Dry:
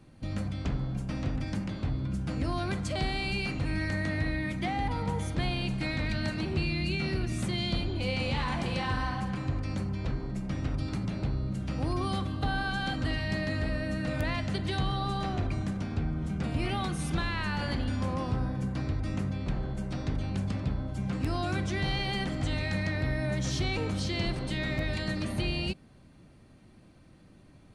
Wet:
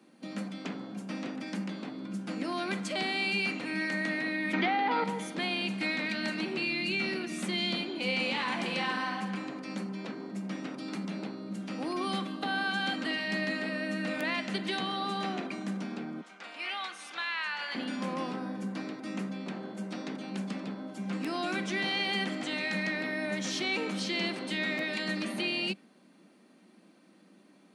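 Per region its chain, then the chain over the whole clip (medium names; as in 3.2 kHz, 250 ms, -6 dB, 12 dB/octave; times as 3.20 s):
4.53–5.04 s: cabinet simulation 180–4600 Hz, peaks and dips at 200 Hz -4 dB, 420 Hz +5 dB, 860 Hz +5 dB, 1.4 kHz +6 dB + level flattener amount 100%
16.21–17.75 s: high-pass 950 Hz + distance through air 66 m
whole clip: Chebyshev high-pass 190 Hz, order 5; dynamic bell 2.4 kHz, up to +5 dB, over -48 dBFS, Q 1.1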